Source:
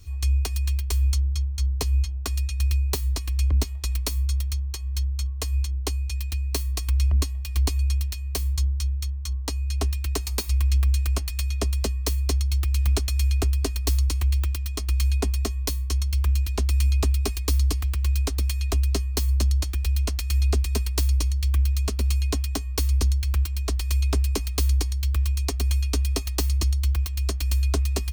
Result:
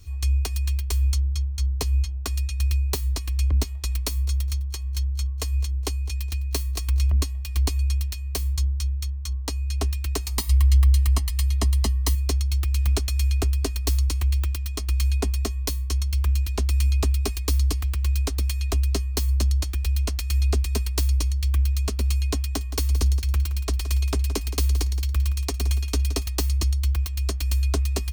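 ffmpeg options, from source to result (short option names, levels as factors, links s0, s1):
-filter_complex "[0:a]asettb=1/sr,asplit=3[s0][s1][s2];[s0]atrim=end=4.054[s3];[s1]atrim=start=4.05:end=7.12,asetpts=PTS-STARTPTS,afade=t=in:d=0.004:c=qsin,afade=t=out:st=3.066:d=0.004:c=qsin,aecho=1:1:207|414:0.106|0.0286,atrim=end_sample=135387[s4];[s2]atrim=start=7.116[s5];[s3][s4]acrossfade=d=0.004:c1=hsin:c2=qsin[s6];[s6][s5]acrossfade=d=0.004:c1=qsin:c2=hsin,asettb=1/sr,asplit=3[s7][s8][s9];[s7]atrim=end=10.374[s10];[s8]atrim=start=10.37:end=12.15,asetpts=PTS-STARTPTS,afade=t=in:d=0.004:c=qsin,afade=t=out:st=1.776:d=0.004:c=qsin,aecho=1:1:1:0.65,atrim=end_sample=78498[s11];[s9]atrim=start=12.146[s12];[s10][s11]acrossfade=d=0.004:c1=hsin:c2=qsin[s13];[s13][s12]acrossfade=d=0.004:c1=qsin:c2=hsin,asettb=1/sr,asplit=3[s14][s15][s16];[s14]atrim=end=22.384[s17];[s15]atrim=start=22.38:end=26.27,asetpts=PTS-STARTPTS,afade=t=in:d=0.004:c=qsin,afade=t=out:st=3.886:d=0.004:c=qsin,aecho=1:1:170|340|510:0.224|0.0716|0.0229,atrim=end_sample=171549[s18];[s16]atrim=start=26.266[s19];[s17][s18]acrossfade=d=0.004:c1=hsin:c2=qsin[s20];[s20][s19]acrossfade=d=0.004:c1=qsin:c2=hsin"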